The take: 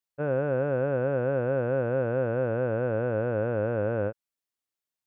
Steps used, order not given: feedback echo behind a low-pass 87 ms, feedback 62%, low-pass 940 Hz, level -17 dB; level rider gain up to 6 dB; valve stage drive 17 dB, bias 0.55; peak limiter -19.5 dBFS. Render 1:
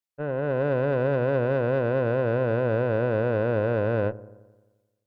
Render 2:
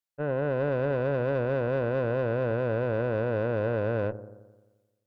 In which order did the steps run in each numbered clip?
peak limiter > level rider > valve stage > feedback echo behind a low-pass; level rider > feedback echo behind a low-pass > valve stage > peak limiter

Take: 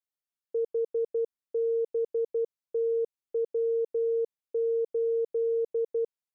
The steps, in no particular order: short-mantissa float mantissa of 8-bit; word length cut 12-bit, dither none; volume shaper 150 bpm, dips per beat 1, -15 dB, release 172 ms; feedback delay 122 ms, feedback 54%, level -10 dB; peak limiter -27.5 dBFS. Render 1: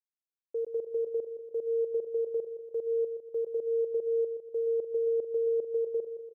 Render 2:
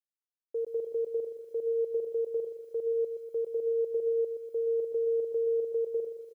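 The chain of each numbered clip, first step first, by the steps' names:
word length cut > peak limiter > feedback delay > volume shaper > short-mantissa float; volume shaper > peak limiter > feedback delay > short-mantissa float > word length cut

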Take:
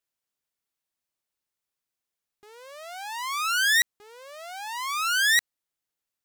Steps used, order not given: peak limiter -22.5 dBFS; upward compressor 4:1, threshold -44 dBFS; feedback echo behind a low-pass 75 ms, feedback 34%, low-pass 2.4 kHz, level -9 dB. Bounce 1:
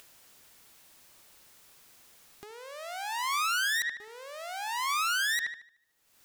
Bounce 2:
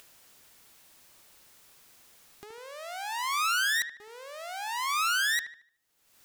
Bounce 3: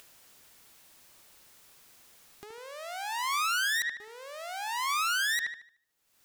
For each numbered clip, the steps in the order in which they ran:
feedback echo behind a low-pass > peak limiter > upward compressor; peak limiter > upward compressor > feedback echo behind a low-pass; upward compressor > feedback echo behind a low-pass > peak limiter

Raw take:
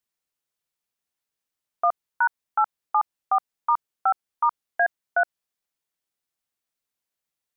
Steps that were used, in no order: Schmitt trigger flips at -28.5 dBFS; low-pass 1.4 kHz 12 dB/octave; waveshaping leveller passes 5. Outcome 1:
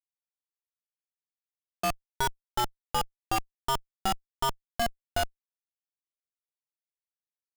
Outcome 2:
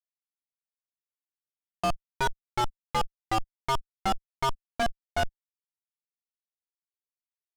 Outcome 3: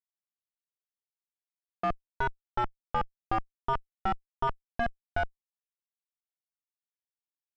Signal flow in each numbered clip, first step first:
low-pass > waveshaping leveller > Schmitt trigger; Schmitt trigger > low-pass > waveshaping leveller; waveshaping leveller > Schmitt trigger > low-pass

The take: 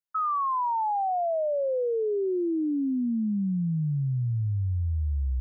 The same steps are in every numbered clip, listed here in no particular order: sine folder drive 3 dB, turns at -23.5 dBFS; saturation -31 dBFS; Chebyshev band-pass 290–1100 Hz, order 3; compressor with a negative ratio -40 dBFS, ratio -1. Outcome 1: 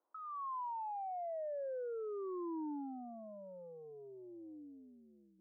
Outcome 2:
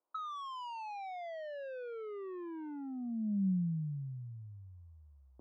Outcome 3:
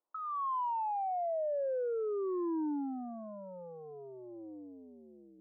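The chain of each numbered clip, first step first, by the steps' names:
sine folder > compressor with a negative ratio > saturation > Chebyshev band-pass; Chebyshev band-pass > saturation > sine folder > compressor with a negative ratio; saturation > compressor with a negative ratio > Chebyshev band-pass > sine folder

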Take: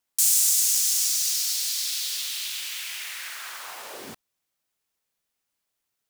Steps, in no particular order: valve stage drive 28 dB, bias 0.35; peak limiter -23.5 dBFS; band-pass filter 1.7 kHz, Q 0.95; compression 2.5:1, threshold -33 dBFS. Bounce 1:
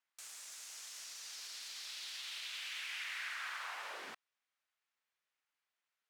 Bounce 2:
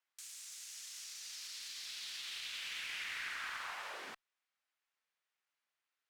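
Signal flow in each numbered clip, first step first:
peak limiter > compression > valve stage > band-pass filter; peak limiter > compression > band-pass filter > valve stage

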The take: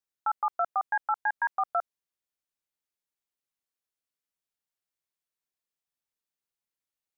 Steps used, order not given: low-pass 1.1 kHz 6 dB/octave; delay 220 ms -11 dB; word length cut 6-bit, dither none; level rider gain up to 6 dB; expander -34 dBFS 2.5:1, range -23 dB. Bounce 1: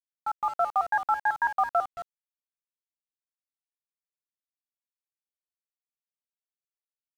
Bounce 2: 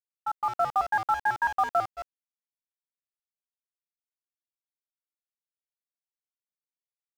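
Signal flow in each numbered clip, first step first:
delay > expander > level rider > word length cut > low-pass; delay > word length cut > low-pass > expander > level rider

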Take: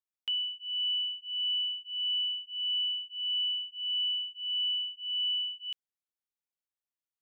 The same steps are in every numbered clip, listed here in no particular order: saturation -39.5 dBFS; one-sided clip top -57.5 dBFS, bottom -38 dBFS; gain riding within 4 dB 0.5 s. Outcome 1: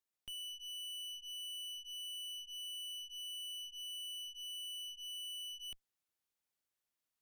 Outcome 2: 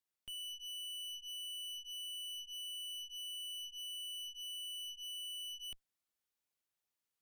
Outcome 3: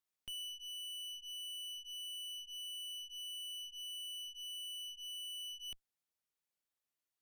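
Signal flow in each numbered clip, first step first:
gain riding > saturation > one-sided clip; gain riding > one-sided clip > saturation; saturation > gain riding > one-sided clip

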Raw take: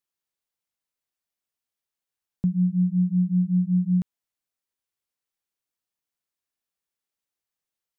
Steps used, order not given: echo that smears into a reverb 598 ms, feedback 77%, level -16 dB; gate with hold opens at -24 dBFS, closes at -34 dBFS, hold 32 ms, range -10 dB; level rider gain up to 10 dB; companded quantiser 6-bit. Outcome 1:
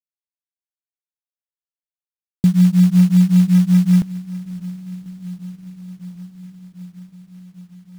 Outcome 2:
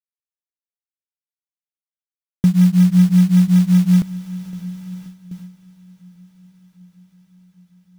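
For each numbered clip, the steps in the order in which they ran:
gate with hold > level rider > echo that smears into a reverb > companded quantiser; companded quantiser > level rider > echo that smears into a reverb > gate with hold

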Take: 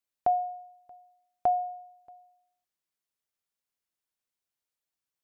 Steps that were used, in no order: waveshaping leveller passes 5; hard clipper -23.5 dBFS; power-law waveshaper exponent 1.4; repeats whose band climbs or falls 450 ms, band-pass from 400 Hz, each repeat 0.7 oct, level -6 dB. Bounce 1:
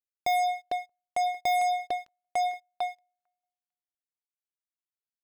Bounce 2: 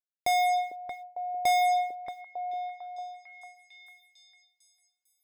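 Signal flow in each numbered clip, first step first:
repeats whose band climbs or falls > power-law waveshaper > waveshaping leveller > hard clipper; waveshaping leveller > hard clipper > power-law waveshaper > repeats whose band climbs or falls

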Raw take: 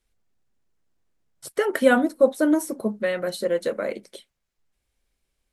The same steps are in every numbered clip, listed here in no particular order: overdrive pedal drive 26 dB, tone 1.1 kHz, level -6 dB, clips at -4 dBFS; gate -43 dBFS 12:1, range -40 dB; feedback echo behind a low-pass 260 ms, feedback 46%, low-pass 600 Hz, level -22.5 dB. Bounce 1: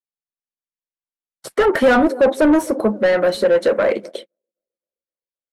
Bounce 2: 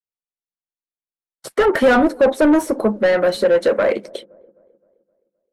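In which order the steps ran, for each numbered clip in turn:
feedback echo behind a low-pass > gate > overdrive pedal; gate > overdrive pedal > feedback echo behind a low-pass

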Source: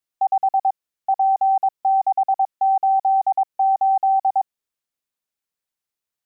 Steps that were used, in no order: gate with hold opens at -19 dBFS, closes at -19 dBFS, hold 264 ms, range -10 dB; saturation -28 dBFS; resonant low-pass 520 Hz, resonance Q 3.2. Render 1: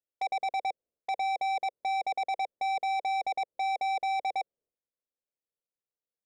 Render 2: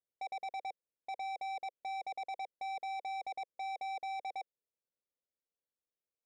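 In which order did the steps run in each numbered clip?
gate with hold > resonant low-pass > saturation; resonant low-pass > saturation > gate with hold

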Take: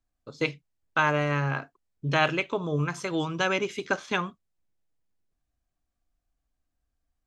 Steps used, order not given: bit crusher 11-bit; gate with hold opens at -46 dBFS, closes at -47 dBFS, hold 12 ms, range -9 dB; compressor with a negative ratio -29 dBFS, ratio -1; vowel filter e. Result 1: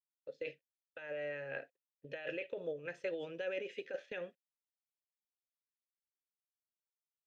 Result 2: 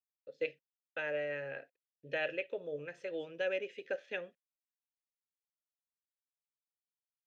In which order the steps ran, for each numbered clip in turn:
bit crusher > compressor with a negative ratio > vowel filter > gate with hold; gate with hold > bit crusher > vowel filter > compressor with a negative ratio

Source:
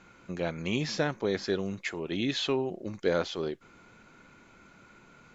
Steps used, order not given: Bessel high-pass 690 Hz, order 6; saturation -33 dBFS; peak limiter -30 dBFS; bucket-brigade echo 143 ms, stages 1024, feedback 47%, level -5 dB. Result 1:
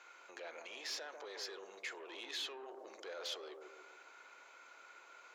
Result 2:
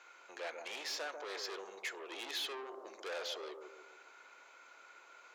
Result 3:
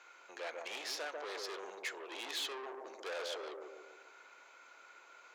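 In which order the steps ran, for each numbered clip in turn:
peak limiter > bucket-brigade echo > saturation > Bessel high-pass; saturation > bucket-brigade echo > peak limiter > Bessel high-pass; bucket-brigade echo > saturation > peak limiter > Bessel high-pass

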